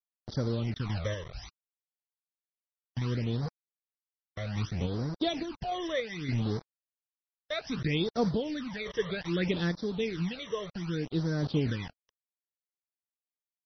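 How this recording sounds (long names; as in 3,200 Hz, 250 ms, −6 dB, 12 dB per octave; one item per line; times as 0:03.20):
a quantiser's noise floor 6 bits, dither none
sample-and-hold tremolo
phaser sweep stages 12, 0.64 Hz, lowest notch 240–2,700 Hz
MP3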